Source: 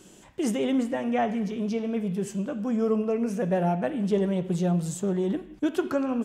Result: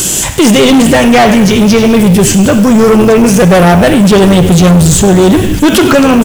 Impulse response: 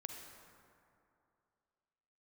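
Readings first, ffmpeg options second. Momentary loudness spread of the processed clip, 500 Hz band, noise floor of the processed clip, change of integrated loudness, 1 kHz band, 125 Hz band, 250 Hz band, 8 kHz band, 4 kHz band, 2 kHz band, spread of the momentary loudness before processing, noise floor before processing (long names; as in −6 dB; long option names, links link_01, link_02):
2 LU, +20.5 dB, −12 dBFS, +21.5 dB, +22.0 dB, +22.5 dB, +21.0 dB, +30.5 dB, +30.5 dB, +26.5 dB, 5 LU, −52 dBFS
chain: -filter_complex "[0:a]lowshelf=frequency=160:width_type=q:width=1.5:gain=6,acrossover=split=4500[link_01][link_02];[link_02]acompressor=threshold=-53dB:ratio=4:attack=1:release=60[link_03];[link_01][link_03]amix=inputs=2:normalize=0,crystalizer=i=5:c=0,asplit=2[link_04][link_05];[link_05]asplit=6[link_06][link_07][link_08][link_09][link_10][link_11];[link_06]adelay=98,afreqshift=-95,volume=-16dB[link_12];[link_07]adelay=196,afreqshift=-190,volume=-20.4dB[link_13];[link_08]adelay=294,afreqshift=-285,volume=-24.9dB[link_14];[link_09]adelay=392,afreqshift=-380,volume=-29.3dB[link_15];[link_10]adelay=490,afreqshift=-475,volume=-33.7dB[link_16];[link_11]adelay=588,afreqshift=-570,volume=-38.2dB[link_17];[link_12][link_13][link_14][link_15][link_16][link_17]amix=inputs=6:normalize=0[link_18];[link_04][link_18]amix=inputs=2:normalize=0,acrusher=bits=5:mode=log:mix=0:aa=0.000001,asoftclip=type=tanh:threshold=-29dB,alimiter=level_in=33.5dB:limit=-1dB:release=50:level=0:latency=1,volume=-1dB"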